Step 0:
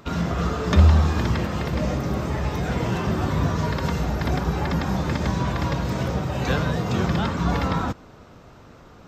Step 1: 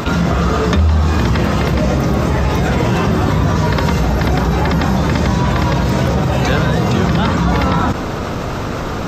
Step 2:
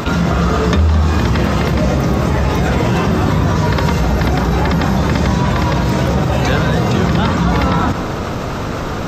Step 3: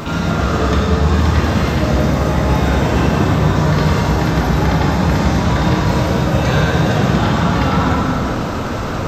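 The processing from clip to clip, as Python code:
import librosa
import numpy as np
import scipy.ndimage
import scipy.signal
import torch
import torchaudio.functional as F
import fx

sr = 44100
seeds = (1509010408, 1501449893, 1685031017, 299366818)

y1 = fx.env_flatten(x, sr, amount_pct=70)
y2 = y1 + 10.0 ** (-13.5 / 20.0) * np.pad(y1, (int(213 * sr / 1000.0), 0))[:len(y1)]
y3 = fx.rev_plate(y2, sr, seeds[0], rt60_s=2.9, hf_ratio=0.85, predelay_ms=0, drr_db=-4.5)
y3 = y3 * librosa.db_to_amplitude(-6.0)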